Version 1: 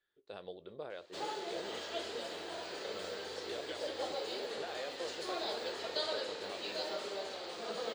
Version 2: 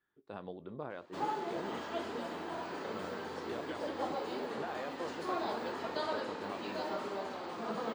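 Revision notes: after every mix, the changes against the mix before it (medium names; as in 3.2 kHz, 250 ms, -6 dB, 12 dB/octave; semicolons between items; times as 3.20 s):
master: add graphic EQ 125/250/500/1000/4000/8000 Hz +9/+11/-5/+9/-8/-6 dB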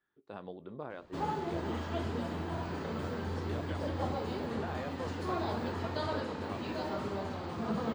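background: remove high-pass 340 Hz 12 dB/octave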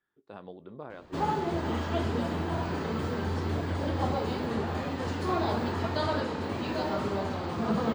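background +6.0 dB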